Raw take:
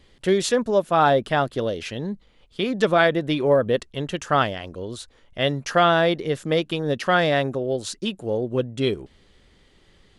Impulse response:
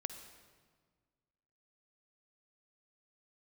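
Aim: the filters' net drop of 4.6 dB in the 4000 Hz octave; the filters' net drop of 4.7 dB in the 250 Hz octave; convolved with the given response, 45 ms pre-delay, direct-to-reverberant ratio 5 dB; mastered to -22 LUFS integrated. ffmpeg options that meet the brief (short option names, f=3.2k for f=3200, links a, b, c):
-filter_complex "[0:a]equalizer=f=250:t=o:g=-7,equalizer=f=4k:t=o:g=-6,asplit=2[a][b];[1:a]atrim=start_sample=2205,adelay=45[c];[b][c]afir=irnorm=-1:irlink=0,volume=-4dB[d];[a][d]amix=inputs=2:normalize=0,volume=1dB"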